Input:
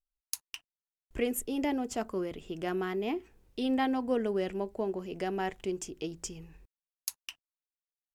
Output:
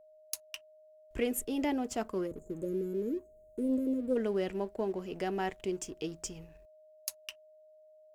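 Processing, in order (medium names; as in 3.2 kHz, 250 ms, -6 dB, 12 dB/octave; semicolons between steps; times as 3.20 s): spectral selection erased 2.27–4.16 s, 620–6300 Hz; waveshaping leveller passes 1; whistle 620 Hz -52 dBFS; trim -4.5 dB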